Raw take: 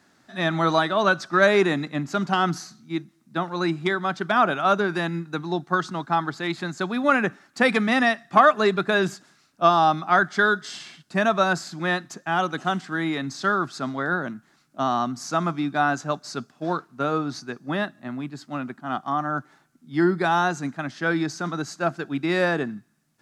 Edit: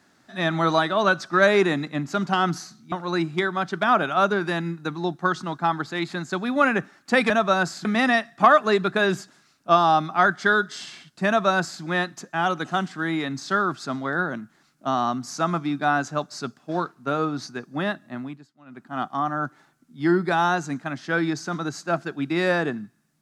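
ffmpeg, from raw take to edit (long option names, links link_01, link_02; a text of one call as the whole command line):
ffmpeg -i in.wav -filter_complex "[0:a]asplit=6[link_01][link_02][link_03][link_04][link_05][link_06];[link_01]atrim=end=2.922[link_07];[link_02]atrim=start=3.398:end=7.782[link_08];[link_03]atrim=start=11.198:end=11.752[link_09];[link_04]atrim=start=7.778:end=18.41,asetpts=PTS-STARTPTS,afade=type=out:start_time=10.332:duration=0.3:silence=0.0794328[link_10];[link_05]atrim=start=18.41:end=18.58,asetpts=PTS-STARTPTS,volume=-22dB[link_11];[link_06]atrim=start=18.58,asetpts=PTS-STARTPTS,afade=type=in:duration=0.3:silence=0.0794328[link_12];[link_07][link_08]acrossfade=duration=0.004:curve1=hsin:curve2=hsin[link_13];[link_13][link_09]acrossfade=duration=0.004:curve1=hsin:curve2=hsin[link_14];[link_10][link_11][link_12]concat=n=3:v=0:a=1[link_15];[link_14][link_15]acrossfade=duration=0.004:curve1=hsin:curve2=hsin" out.wav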